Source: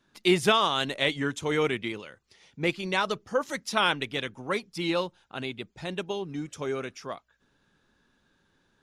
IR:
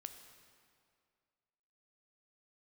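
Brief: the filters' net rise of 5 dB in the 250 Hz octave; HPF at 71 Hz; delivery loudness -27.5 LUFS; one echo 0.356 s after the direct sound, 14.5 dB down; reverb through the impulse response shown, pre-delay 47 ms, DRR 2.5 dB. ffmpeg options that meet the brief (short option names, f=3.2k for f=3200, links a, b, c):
-filter_complex "[0:a]highpass=71,equalizer=f=250:t=o:g=7.5,aecho=1:1:356:0.188,asplit=2[a][b];[1:a]atrim=start_sample=2205,adelay=47[c];[b][c]afir=irnorm=-1:irlink=0,volume=2dB[d];[a][d]amix=inputs=2:normalize=0,volume=-2.5dB"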